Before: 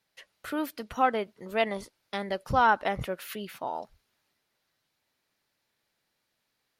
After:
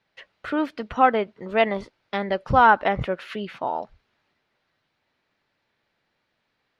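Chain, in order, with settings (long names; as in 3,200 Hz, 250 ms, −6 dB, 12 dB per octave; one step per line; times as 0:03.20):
low-pass filter 3,100 Hz 12 dB per octave
level +7 dB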